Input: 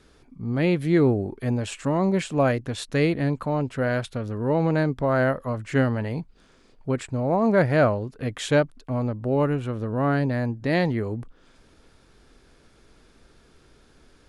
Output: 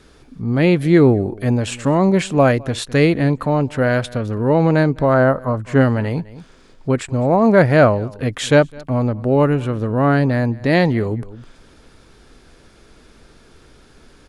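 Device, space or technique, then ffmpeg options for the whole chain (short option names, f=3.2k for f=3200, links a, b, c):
ducked delay: -filter_complex "[0:a]asplit=3[a][b][c];[b]adelay=207,volume=-8dB[d];[c]apad=whole_len=639267[e];[d][e]sidechaincompress=threshold=-38dB:ratio=12:attack=9.8:release=373[f];[a][f]amix=inputs=2:normalize=0,asettb=1/sr,asplit=3[g][h][i];[g]atrim=end=5.144[j];[h]atrim=start=5.14:end=5.81,asetpts=PTS-STARTPTS,afade=t=in:d=0.004:c=qsin,afade=t=out:st=0.666:d=0.004:c=qsin,highshelf=f=1.6k:t=q:w=1.5:g=-6[k];[i]atrim=start=5.806[l];[j][k]acrossfade=d=0.004:c1=hsin:c2=qsin[m];[m][l]acrossfade=d=0.004:c1=qsin:c2=hsin,volume=7.5dB"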